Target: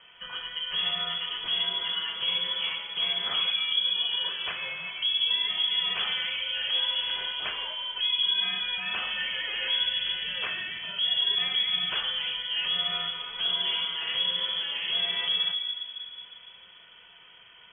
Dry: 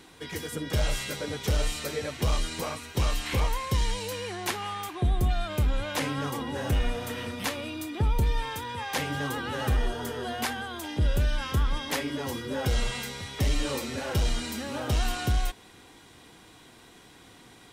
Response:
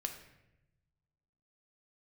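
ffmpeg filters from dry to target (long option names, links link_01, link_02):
-filter_complex "[0:a]asettb=1/sr,asplit=3[link_01][link_02][link_03];[link_01]atrim=end=3.504[link_04];[link_02]atrim=start=3.5:end=4.24,asetpts=PTS-STARTPTS,afade=type=in:duration=0.004:curve=qsin,afade=type=out:start_time=0.736:duration=0.004:curve=qsin,tiltshelf=frequency=1100:gain=6.5[link_05];[link_03]atrim=start=4.236[link_06];[link_04][link_05]acrossfade=duration=0.004:curve1=hsin:curve2=qsin[link_07];[link_07][link_06]acrossfade=duration=0.004:curve1=qsin:curve2=hsin,alimiter=limit=-19.5dB:level=0:latency=1:release=94[link_08];[1:a]atrim=start_sample=2205,asetrate=34398,aresample=44100[link_09];[link_08][link_09]afir=irnorm=-1:irlink=0,lowpass=frequency=2900:width_type=q:width=0.5098,lowpass=frequency=2900:width_type=q:width=0.6013,lowpass=frequency=2900:width_type=q:width=0.9,lowpass=frequency=2900:width_type=q:width=2.563,afreqshift=-3400,volume=-1dB"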